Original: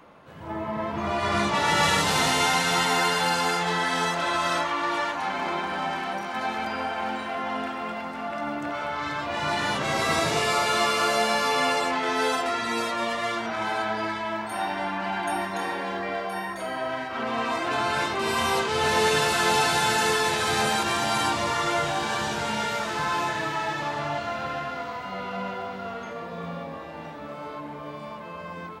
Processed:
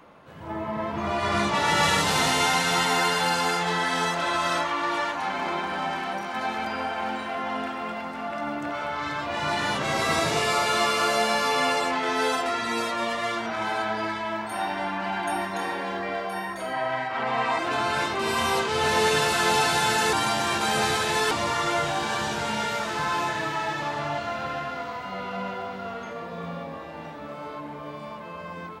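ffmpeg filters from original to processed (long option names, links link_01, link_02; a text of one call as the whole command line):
ffmpeg -i in.wav -filter_complex "[0:a]asettb=1/sr,asplit=3[link_01][link_02][link_03];[link_01]atrim=end=16.734[link_04];[link_02]atrim=start=16.73:end=17.59,asetpts=PTS-STARTPTS,afade=type=in:duration=0.004:curve=qsin,afade=type=out:start_time=0.856:duration=0.004:curve=qsin,highpass=120,equalizer=frequency=130:width_type=q:width=4:gain=8,equalizer=frequency=230:width_type=q:width=4:gain=-5,equalizer=frequency=350:width_type=q:width=4:gain=-4,equalizer=frequency=840:width_type=q:width=4:gain=8,equalizer=frequency=2000:width_type=q:width=4:gain=6,equalizer=frequency=6100:width_type=q:width=4:gain=-4,lowpass=frequency=9300:width=0.5412,lowpass=frequency=9300:width=1.3066[link_05];[link_03]atrim=start=17.586[link_06];[link_04][link_05]acrossfade=duration=0.004:curve1=hsin:curve2=qsin[link_07];[link_07][link_06]acrossfade=duration=0.004:curve1=qsin:curve2=hsin,asplit=3[link_08][link_09][link_10];[link_08]atrim=end=20.132[link_11];[link_09]atrim=start=20.128:end=21.312,asetpts=PTS-STARTPTS,areverse[link_12];[link_10]atrim=start=21.308[link_13];[link_11][link_12]acrossfade=duration=0.004:curve1=hsin:curve2=hsin[link_14];[link_14][link_13]acrossfade=duration=0.004:curve1=hsin:curve2=hsin" out.wav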